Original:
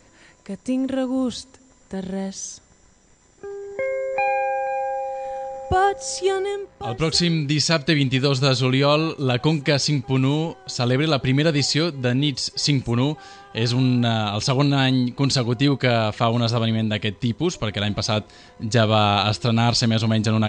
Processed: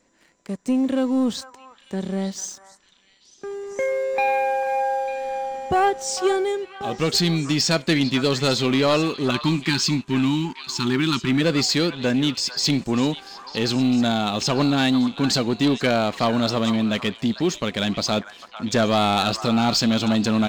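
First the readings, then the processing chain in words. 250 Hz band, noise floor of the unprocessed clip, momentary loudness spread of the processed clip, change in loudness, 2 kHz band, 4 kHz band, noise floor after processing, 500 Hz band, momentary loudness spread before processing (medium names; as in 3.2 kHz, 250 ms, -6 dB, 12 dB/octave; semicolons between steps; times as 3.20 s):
+1.5 dB, -54 dBFS, 9 LU, -0.5 dB, -0.5 dB, -0.5 dB, -56 dBFS, 0.0 dB, 11 LU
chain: spectral selection erased 9.31–11.41 s, 390–830 Hz; resonant low shelf 150 Hz -8 dB, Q 1.5; waveshaping leveller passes 2; repeats whose band climbs or falls 448 ms, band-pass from 1.2 kHz, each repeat 1.4 oct, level -7.5 dB; trim -6.5 dB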